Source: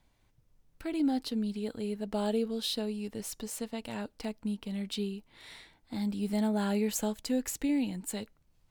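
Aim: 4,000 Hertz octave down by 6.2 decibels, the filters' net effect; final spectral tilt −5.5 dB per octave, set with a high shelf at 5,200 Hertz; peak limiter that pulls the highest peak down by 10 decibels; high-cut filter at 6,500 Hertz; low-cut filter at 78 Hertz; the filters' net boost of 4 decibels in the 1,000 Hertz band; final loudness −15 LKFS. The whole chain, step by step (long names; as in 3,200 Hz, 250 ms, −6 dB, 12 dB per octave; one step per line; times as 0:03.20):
high-pass filter 78 Hz
low-pass filter 6,500 Hz
parametric band 1,000 Hz +5.5 dB
parametric band 4,000 Hz −5 dB
high-shelf EQ 5,200 Hz −5 dB
level +23.5 dB
brickwall limiter −6 dBFS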